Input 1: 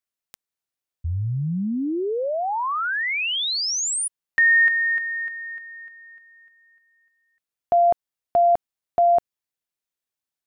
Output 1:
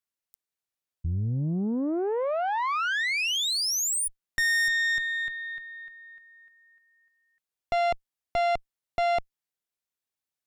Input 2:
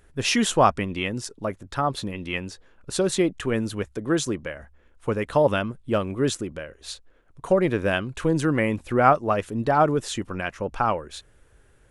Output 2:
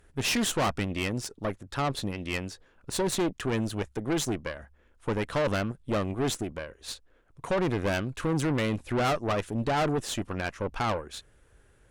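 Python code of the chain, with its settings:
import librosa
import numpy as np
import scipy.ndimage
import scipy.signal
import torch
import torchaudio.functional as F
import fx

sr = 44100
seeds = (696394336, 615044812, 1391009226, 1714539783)

y = fx.tube_stage(x, sr, drive_db=25.0, bias=0.75)
y = F.gain(torch.from_numpy(y), 2.0).numpy()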